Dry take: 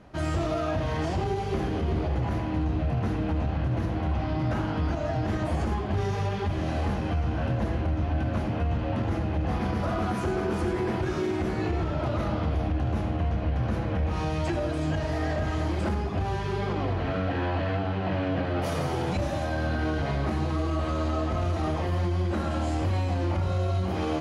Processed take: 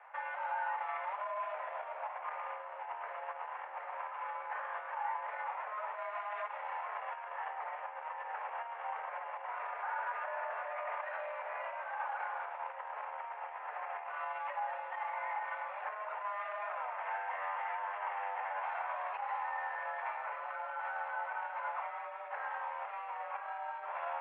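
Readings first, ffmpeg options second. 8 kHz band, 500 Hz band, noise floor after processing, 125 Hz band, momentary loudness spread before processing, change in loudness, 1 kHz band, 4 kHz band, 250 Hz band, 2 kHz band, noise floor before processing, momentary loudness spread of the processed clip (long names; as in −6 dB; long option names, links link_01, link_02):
can't be measured, −14.5 dB, −45 dBFS, below −40 dB, 1 LU, −11.5 dB, −2.5 dB, below −15 dB, below −40 dB, −3.5 dB, −30 dBFS, 5 LU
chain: -af "alimiter=level_in=3dB:limit=-24dB:level=0:latency=1:release=42,volume=-3dB,highpass=frequency=470:width_type=q:width=0.5412,highpass=frequency=470:width_type=q:width=1.307,lowpass=frequency=2200:width_type=q:width=0.5176,lowpass=frequency=2200:width_type=q:width=0.7071,lowpass=frequency=2200:width_type=q:width=1.932,afreqshift=230,volume=1dB"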